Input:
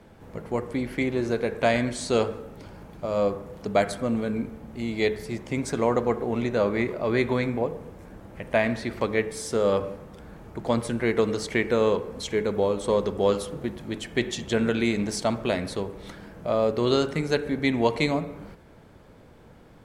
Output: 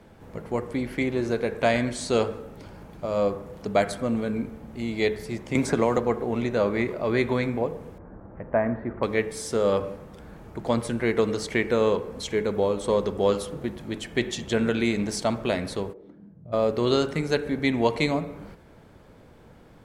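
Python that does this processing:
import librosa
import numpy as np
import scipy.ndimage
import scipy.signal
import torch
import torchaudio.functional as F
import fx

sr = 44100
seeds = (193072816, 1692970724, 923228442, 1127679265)

y = fx.band_squash(x, sr, depth_pct=100, at=(5.55, 5.98))
y = fx.lowpass(y, sr, hz=1500.0, slope=24, at=(7.98, 9.03))
y = fx.bandpass_q(y, sr, hz=fx.line((15.92, 480.0), (16.52, 100.0)), q=2.5, at=(15.92, 16.52), fade=0.02)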